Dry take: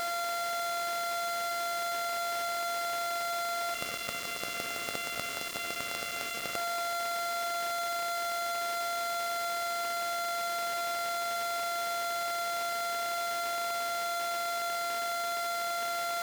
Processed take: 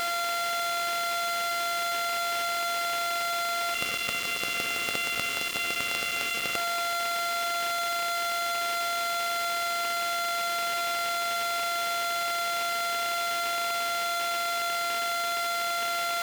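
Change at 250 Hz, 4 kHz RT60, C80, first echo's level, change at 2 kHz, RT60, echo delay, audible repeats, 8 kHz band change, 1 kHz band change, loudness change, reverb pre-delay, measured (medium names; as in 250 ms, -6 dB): +4.0 dB, no reverb, no reverb, no echo, +7.0 dB, no reverb, no echo, no echo, +4.5 dB, +3.5 dB, +5.0 dB, no reverb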